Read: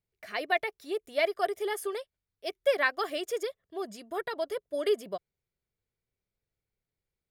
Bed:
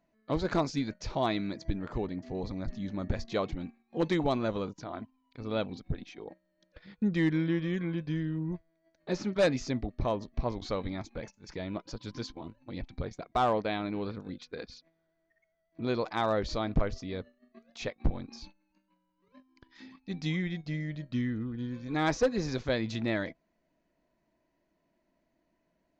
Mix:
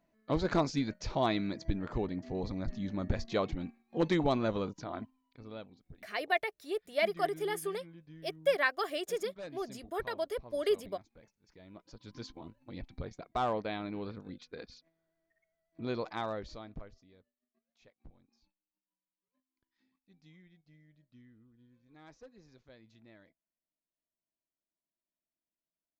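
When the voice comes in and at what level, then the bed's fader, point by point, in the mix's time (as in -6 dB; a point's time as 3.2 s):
5.80 s, -2.5 dB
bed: 5.08 s -0.5 dB
5.78 s -19.5 dB
11.53 s -19.5 dB
12.3 s -5 dB
16.12 s -5 dB
17.24 s -27.5 dB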